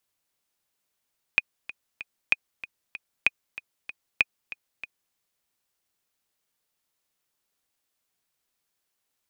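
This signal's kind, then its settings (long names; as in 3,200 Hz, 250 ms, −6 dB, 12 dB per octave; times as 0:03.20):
click track 191 BPM, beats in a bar 3, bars 4, 2,480 Hz, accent 17 dB −5.5 dBFS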